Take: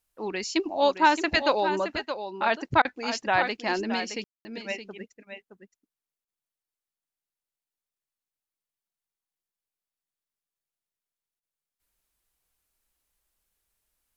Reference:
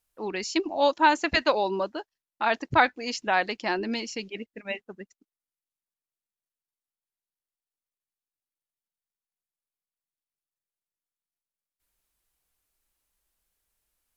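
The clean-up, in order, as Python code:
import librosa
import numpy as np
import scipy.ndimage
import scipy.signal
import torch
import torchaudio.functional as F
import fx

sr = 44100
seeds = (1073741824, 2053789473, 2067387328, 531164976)

y = fx.fix_ambience(x, sr, seeds[0], print_start_s=11.79, print_end_s=12.29, start_s=4.24, end_s=4.45)
y = fx.fix_interpolate(y, sr, at_s=(2.82, 6.25, 11.4), length_ms=28.0)
y = fx.fix_echo_inverse(y, sr, delay_ms=619, level_db=-9.5)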